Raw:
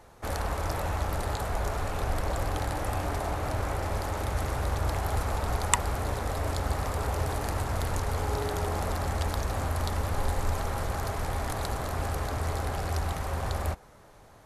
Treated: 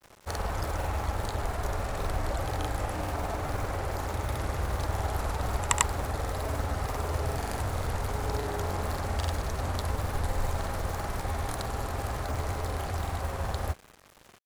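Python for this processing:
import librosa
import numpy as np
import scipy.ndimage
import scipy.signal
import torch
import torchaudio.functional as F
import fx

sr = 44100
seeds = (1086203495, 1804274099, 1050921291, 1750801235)

y = fx.quant_dither(x, sr, seeds[0], bits=8, dither='none')
y = fx.granulator(y, sr, seeds[1], grain_ms=100.0, per_s=20.0, spray_ms=100.0, spread_st=0)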